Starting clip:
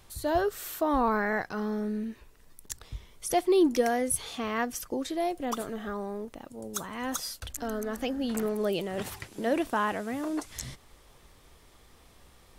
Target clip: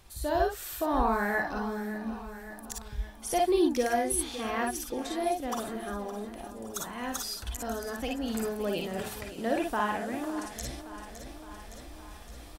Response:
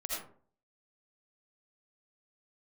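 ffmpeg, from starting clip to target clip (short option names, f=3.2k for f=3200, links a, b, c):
-filter_complex "[0:a]aecho=1:1:564|1128|1692|2256|2820:0.211|0.11|0.0571|0.0297|0.0155[a];[1:a]atrim=start_sample=2205,atrim=end_sample=3528,asetrate=57330,aresample=44100[b];[a][b]afir=irnorm=-1:irlink=0,areverse,acompressor=mode=upward:threshold=-40dB:ratio=2.5,areverse,volume=3dB"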